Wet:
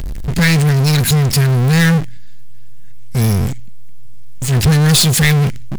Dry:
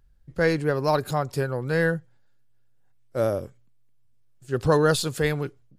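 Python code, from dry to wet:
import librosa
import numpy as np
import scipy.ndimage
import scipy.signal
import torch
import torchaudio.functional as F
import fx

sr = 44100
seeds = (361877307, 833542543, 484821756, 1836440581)

y = scipy.signal.sosfilt(scipy.signal.ellip(3, 1.0, 40, [220.0, 1900.0], 'bandstop', fs=sr, output='sos'), x)
y = fx.power_curve(y, sr, exponent=0.35)
y = F.gain(torch.from_numpy(y), 9.0).numpy()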